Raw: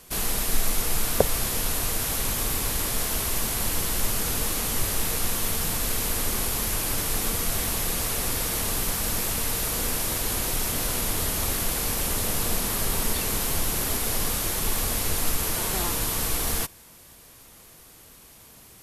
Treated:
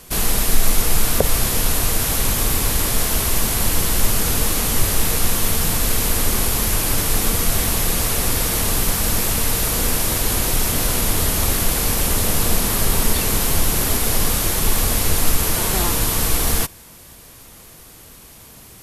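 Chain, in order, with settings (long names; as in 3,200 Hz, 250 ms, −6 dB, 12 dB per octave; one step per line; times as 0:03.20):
low-shelf EQ 230 Hz +3.5 dB
boost into a limiter +7.5 dB
level −1 dB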